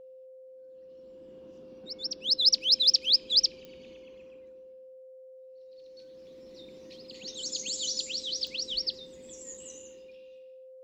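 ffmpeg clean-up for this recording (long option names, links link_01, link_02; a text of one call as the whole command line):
ffmpeg -i in.wav -af "adeclick=threshold=4,bandreject=frequency=520:width=30" out.wav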